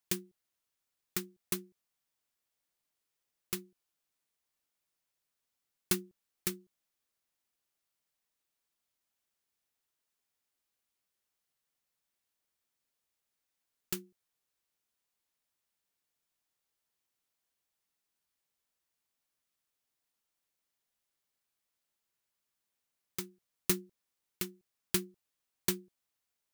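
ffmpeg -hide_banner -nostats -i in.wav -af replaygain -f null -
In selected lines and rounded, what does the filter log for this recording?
track_gain = +31.9 dB
track_peak = 0.172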